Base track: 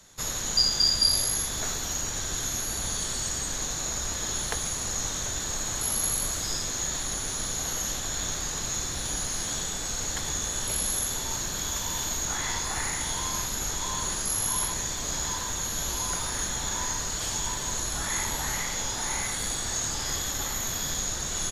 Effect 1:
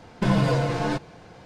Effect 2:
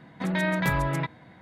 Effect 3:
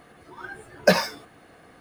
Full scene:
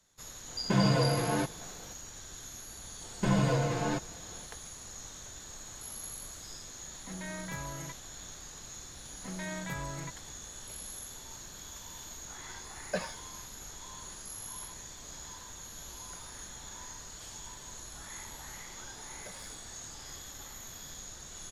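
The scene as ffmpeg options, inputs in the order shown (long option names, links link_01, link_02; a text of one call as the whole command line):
ffmpeg -i bed.wav -i cue0.wav -i cue1.wav -i cue2.wav -filter_complex "[1:a]asplit=2[link_01][link_02];[2:a]asplit=2[link_03][link_04];[3:a]asplit=2[link_05][link_06];[0:a]volume=-15.5dB[link_07];[link_01]highpass=79[link_08];[link_05]acrossover=split=5500[link_09][link_10];[link_10]acompressor=threshold=-45dB:ratio=4:attack=1:release=60[link_11];[link_09][link_11]amix=inputs=2:normalize=0[link_12];[link_06]acompressor=threshold=-34dB:ratio=6:attack=3.2:release=140:knee=1:detection=peak[link_13];[link_08]atrim=end=1.45,asetpts=PTS-STARTPTS,volume=-4.5dB,afade=type=in:duration=0.004:curve=hsin,afade=type=out:start_time=1.446:duration=0.004:curve=hsin,adelay=480[link_14];[link_02]atrim=end=1.45,asetpts=PTS-STARTPTS,volume=-6dB,afade=type=in:duration=0.004:curve=hsin,afade=type=out:start_time=1.446:duration=0.004:curve=hsin,adelay=3010[link_15];[link_03]atrim=end=1.41,asetpts=PTS-STARTPTS,volume=-15.5dB,afade=type=in:duration=0.004:curve=hsin,afade=type=out:start_time=1.406:duration=0.004:curve=hsin,adelay=6860[link_16];[link_04]atrim=end=1.41,asetpts=PTS-STARTPTS,volume=-13.5dB,afade=type=in:duration=0.004:curve=hsin,afade=type=out:start_time=1.406:duration=0.004:curve=hsin,adelay=9040[link_17];[link_12]atrim=end=1.8,asetpts=PTS-STARTPTS,volume=-16.5dB,afade=type=in:duration=0.004:curve=hsin,afade=type=out:start_time=1.796:duration=0.004:curve=hsin,adelay=12060[link_18];[link_13]atrim=end=1.8,asetpts=PTS-STARTPTS,volume=-14dB,afade=type=in:duration=0.004:curve=hsin,afade=type=out:start_time=1.796:duration=0.004:curve=hsin,adelay=18390[link_19];[link_07][link_14][link_15][link_16][link_17][link_18][link_19]amix=inputs=7:normalize=0" out.wav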